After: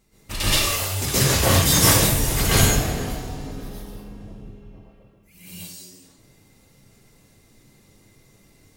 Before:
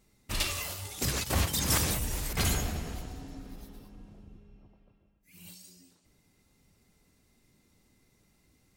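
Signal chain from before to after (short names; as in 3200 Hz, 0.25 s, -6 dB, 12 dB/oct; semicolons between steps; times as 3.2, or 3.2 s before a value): plate-style reverb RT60 0.5 s, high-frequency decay 0.9×, pre-delay 0.11 s, DRR -9.5 dB; gain +2.5 dB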